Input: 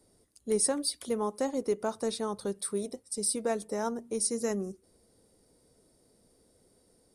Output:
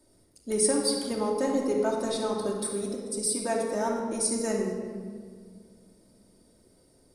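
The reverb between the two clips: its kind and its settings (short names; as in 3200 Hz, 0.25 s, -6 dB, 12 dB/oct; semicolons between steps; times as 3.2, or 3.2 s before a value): shoebox room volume 2800 m³, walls mixed, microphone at 2.7 m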